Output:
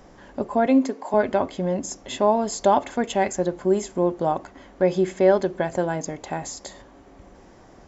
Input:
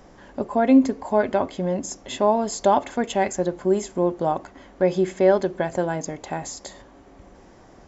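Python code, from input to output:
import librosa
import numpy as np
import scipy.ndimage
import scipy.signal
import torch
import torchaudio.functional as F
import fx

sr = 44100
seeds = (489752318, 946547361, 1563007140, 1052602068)

y = fx.highpass(x, sr, hz=280.0, slope=12, at=(0.66, 1.14))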